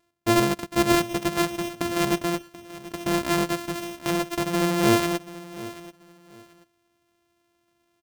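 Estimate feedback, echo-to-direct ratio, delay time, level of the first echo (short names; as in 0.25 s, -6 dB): 24%, -17.0 dB, 0.734 s, -17.0 dB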